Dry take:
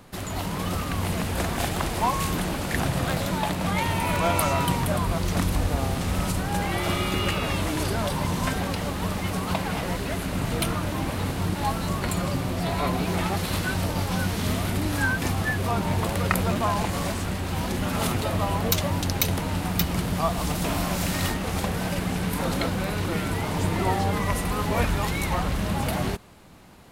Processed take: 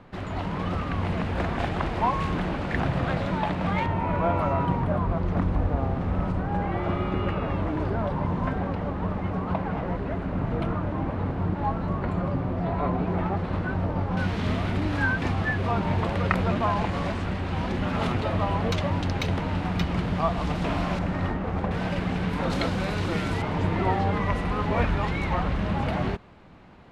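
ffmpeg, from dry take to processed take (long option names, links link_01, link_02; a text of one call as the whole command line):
ffmpeg -i in.wav -af "asetnsamples=nb_out_samples=441:pad=0,asendcmd='3.86 lowpass f 1300;14.17 lowpass f 2900;20.99 lowpass f 1500;21.71 lowpass f 3100;22.5 lowpass f 5400;23.42 lowpass f 2700',lowpass=2400" out.wav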